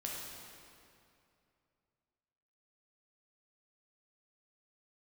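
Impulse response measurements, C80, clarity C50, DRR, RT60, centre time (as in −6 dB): 1.0 dB, −1.0 dB, −3.5 dB, 2.6 s, 124 ms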